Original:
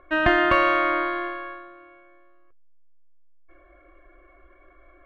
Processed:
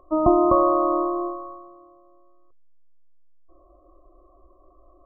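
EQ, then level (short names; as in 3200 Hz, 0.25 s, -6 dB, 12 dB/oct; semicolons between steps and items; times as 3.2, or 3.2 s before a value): brick-wall FIR low-pass 1300 Hz; dynamic EQ 400 Hz, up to +6 dB, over -37 dBFS, Q 0.93; 0.0 dB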